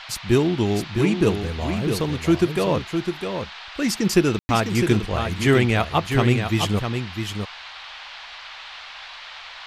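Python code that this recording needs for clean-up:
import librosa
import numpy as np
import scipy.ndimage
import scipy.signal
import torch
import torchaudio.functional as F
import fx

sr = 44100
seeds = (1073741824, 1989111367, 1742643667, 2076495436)

y = fx.fix_ambience(x, sr, seeds[0], print_start_s=9.06, print_end_s=9.56, start_s=4.39, end_s=4.49)
y = fx.noise_reduce(y, sr, print_start_s=9.06, print_end_s=9.56, reduce_db=27.0)
y = fx.fix_echo_inverse(y, sr, delay_ms=656, level_db=-6.5)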